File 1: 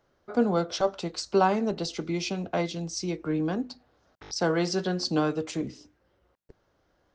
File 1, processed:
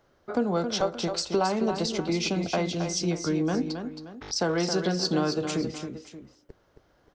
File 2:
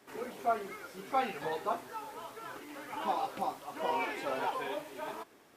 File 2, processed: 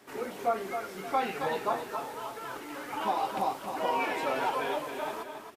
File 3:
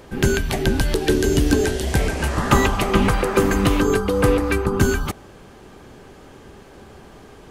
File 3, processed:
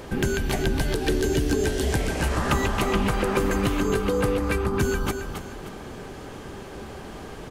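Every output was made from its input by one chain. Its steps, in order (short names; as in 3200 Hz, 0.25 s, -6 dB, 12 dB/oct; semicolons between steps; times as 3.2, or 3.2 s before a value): compressor 3:1, threshold -28 dBFS; soft clip -15 dBFS; tapped delay 0.27/0.578 s -7.5/-16 dB; gain +4.5 dB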